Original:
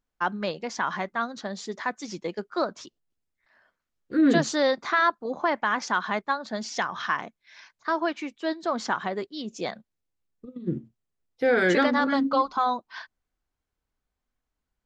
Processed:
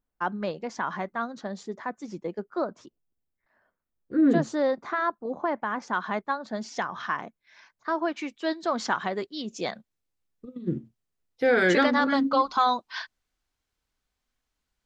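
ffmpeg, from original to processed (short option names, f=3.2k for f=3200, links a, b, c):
-af "asetnsamples=n=441:p=0,asendcmd='1.63 equalizer g -14;5.93 equalizer g -7;8.16 equalizer g 1.5;12.49 equalizer g 8',equalizer=f=4.4k:t=o:w=2.8:g=-8"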